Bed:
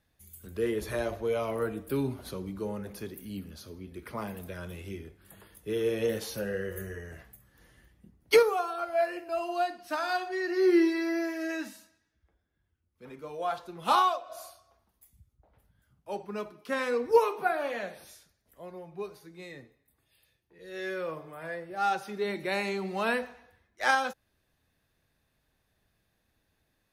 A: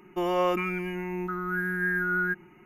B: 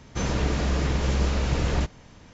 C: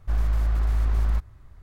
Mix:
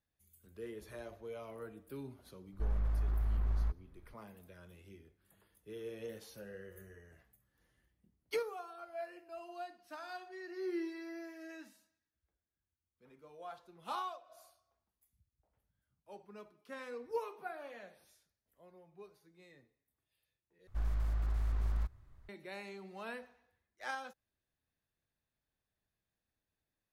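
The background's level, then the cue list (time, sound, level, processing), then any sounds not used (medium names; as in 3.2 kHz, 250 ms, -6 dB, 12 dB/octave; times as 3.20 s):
bed -16 dB
2.52 s: add C -10.5 dB + low-pass 1.6 kHz 6 dB/octave
20.67 s: replace with C -11.5 dB
not used: A, B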